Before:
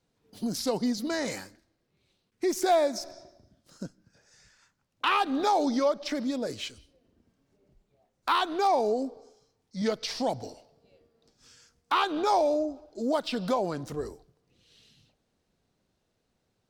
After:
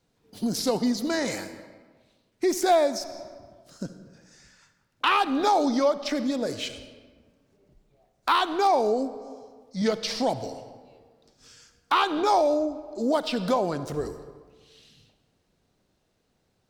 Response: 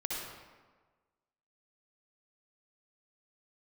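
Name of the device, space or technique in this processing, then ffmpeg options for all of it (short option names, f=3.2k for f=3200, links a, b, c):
compressed reverb return: -filter_complex "[0:a]asplit=2[a][b];[1:a]atrim=start_sample=2205[c];[b][c]afir=irnorm=-1:irlink=0,acompressor=threshold=-27dB:ratio=6,volume=-9.5dB[d];[a][d]amix=inputs=2:normalize=0,volume=2dB"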